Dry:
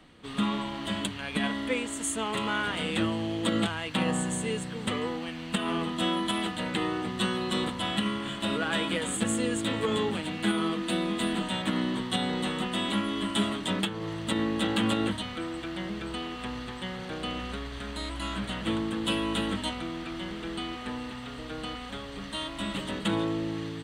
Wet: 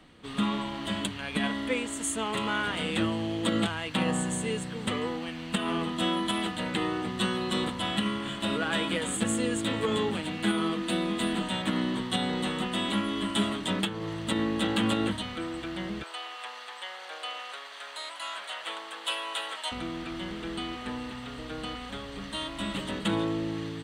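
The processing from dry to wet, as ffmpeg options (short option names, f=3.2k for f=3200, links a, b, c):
-filter_complex "[0:a]asettb=1/sr,asplit=3[a][b][c];[a]atrim=end=16.034[d];[b]atrim=start=16.03:end=19.72,asetpts=PTS-STARTPTS,afade=t=in:d=0.004:c=qsin,afade=t=out:st=3.686:d=0.004:c=qsin,highpass=f=610:w=0.5412,highpass=f=610:w=1.3066[e];[c]atrim=start=19.716[f];[d][e]acrossfade=d=0.004:c1=hsin:c2=qsin[g];[g][f]acrossfade=d=0.004:c1=qsin:c2=hsin"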